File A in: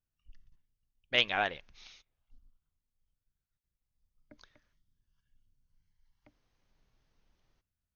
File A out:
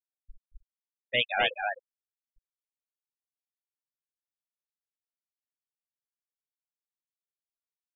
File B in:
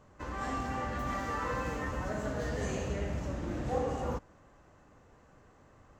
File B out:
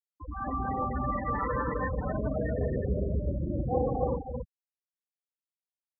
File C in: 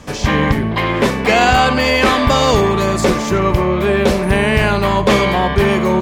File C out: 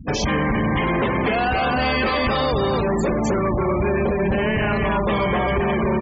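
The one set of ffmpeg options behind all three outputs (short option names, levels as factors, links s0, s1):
-filter_complex "[0:a]asplit=2[s0][s1];[s1]aecho=0:1:258:0.668[s2];[s0][s2]amix=inputs=2:normalize=0,acompressor=threshold=0.126:ratio=8,acrusher=bits=9:dc=4:mix=0:aa=0.000001,asoftclip=type=hard:threshold=0.0944,afftfilt=real='re*gte(hypot(re,im),0.0501)':imag='im*gte(hypot(re,im),0.0501)':win_size=1024:overlap=0.75,volume=1.58"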